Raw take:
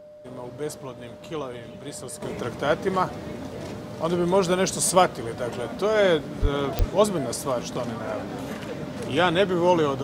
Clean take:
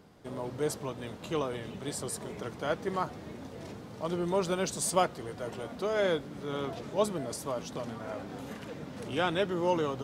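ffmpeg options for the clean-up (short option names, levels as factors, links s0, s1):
-filter_complex "[0:a]adeclick=t=4,bandreject=f=600:w=30,asplit=3[s0][s1][s2];[s0]afade=t=out:st=6.41:d=0.02[s3];[s1]highpass=f=140:w=0.5412,highpass=f=140:w=1.3066,afade=t=in:st=6.41:d=0.02,afade=t=out:st=6.53:d=0.02[s4];[s2]afade=t=in:st=6.53:d=0.02[s5];[s3][s4][s5]amix=inputs=3:normalize=0,asplit=3[s6][s7][s8];[s6]afade=t=out:st=6.78:d=0.02[s9];[s7]highpass=f=140:w=0.5412,highpass=f=140:w=1.3066,afade=t=in:st=6.78:d=0.02,afade=t=out:st=6.9:d=0.02[s10];[s8]afade=t=in:st=6.9:d=0.02[s11];[s9][s10][s11]amix=inputs=3:normalize=0,asetnsamples=n=441:p=0,asendcmd='2.22 volume volume -8.5dB',volume=1"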